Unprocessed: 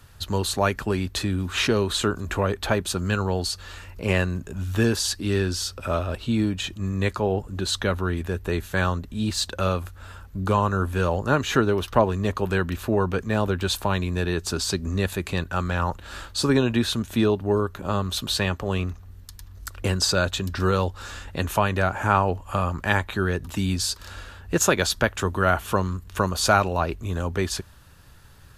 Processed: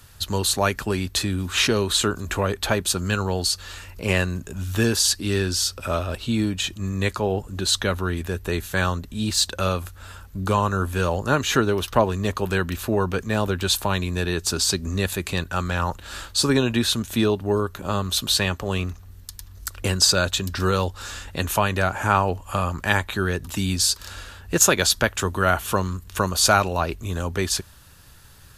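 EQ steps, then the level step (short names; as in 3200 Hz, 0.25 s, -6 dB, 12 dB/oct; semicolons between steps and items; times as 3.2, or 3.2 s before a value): high shelf 3200 Hz +8 dB; 0.0 dB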